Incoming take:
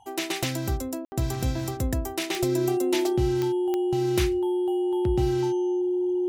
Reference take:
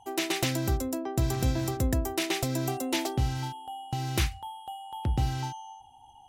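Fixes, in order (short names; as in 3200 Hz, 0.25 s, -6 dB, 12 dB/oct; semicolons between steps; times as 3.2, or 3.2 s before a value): de-click; notch 360 Hz, Q 30; room tone fill 1.05–1.12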